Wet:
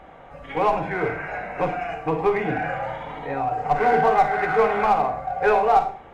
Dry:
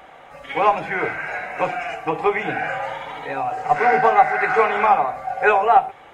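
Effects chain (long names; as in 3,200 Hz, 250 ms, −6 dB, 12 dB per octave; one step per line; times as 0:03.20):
spectral tilt −3 dB per octave
in parallel at −6 dB: gain into a clipping stage and back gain 18 dB
on the sum: four-comb reverb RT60 0.4 s, combs from 33 ms, DRR 7.5 dB
level −6.5 dB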